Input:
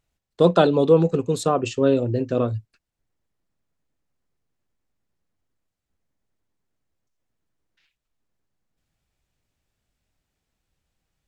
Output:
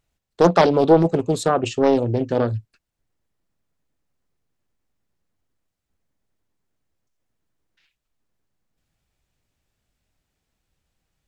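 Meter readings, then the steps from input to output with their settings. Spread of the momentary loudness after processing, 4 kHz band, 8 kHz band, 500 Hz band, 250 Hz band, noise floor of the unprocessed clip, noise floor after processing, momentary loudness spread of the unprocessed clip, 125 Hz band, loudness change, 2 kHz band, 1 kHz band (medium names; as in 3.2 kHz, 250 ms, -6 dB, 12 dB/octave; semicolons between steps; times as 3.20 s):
7 LU, +1.5 dB, +2.0 dB, +1.0 dB, +2.0 dB, -83 dBFS, -81 dBFS, 8 LU, +0.5 dB, +1.5 dB, +4.5 dB, +5.0 dB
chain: loudspeaker Doppler distortion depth 0.52 ms; trim +2 dB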